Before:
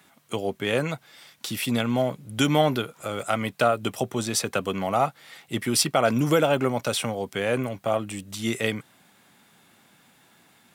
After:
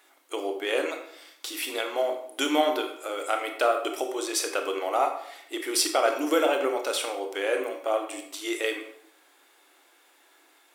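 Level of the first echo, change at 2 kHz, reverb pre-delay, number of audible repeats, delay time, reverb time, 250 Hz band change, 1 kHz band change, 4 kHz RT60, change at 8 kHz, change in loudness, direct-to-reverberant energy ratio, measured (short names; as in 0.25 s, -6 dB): none, -1.0 dB, 23 ms, none, none, 0.70 s, -6.0 dB, -1.0 dB, 0.50 s, -1.5 dB, -2.0 dB, 4.0 dB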